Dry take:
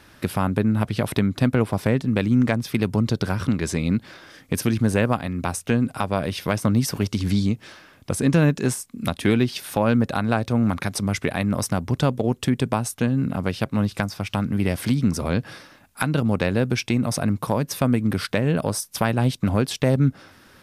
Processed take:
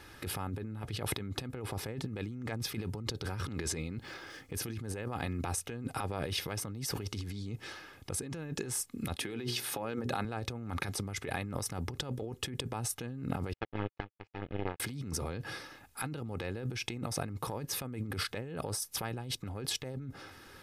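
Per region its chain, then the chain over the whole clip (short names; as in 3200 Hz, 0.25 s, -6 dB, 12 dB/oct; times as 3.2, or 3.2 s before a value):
3.8–4.55 median filter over 3 samples + notch 3800 Hz, Q 22
9.16–10.25 HPF 130 Hz + notches 60/120/180/240/300/360/420/480 Hz
13.53–14.8 CVSD 16 kbps + power-law curve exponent 3
whole clip: comb 2.4 ms, depth 44%; limiter -14.5 dBFS; negative-ratio compressor -30 dBFS, ratio -1; gain -7.5 dB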